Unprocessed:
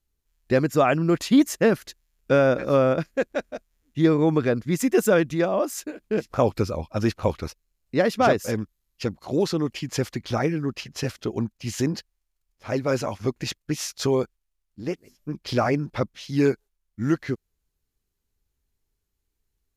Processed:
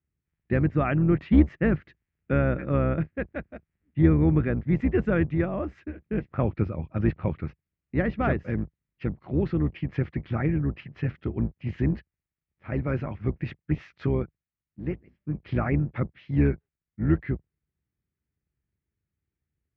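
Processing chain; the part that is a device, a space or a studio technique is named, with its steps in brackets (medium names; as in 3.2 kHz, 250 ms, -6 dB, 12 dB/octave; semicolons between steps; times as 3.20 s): high-order bell 680 Hz -9.5 dB; sub-octave bass pedal (octave divider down 2 oct, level -1 dB; cabinet simulation 64–2100 Hz, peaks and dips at 150 Hz +4 dB, 260 Hz -4 dB, 1.5 kHz -5 dB)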